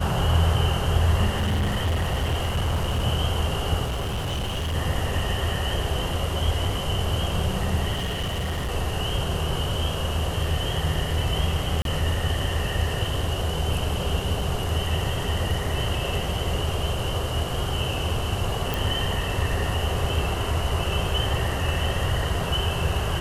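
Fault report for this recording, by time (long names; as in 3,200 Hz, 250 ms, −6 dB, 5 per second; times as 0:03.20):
0:01.37–0:03.05: clipping −20 dBFS
0:03.84–0:04.75: clipping −24 dBFS
0:07.93–0:08.72: clipping −23.5 dBFS
0:11.82–0:11.85: drop-out 32 ms
0:14.41: drop-out 2.6 ms
0:18.74: click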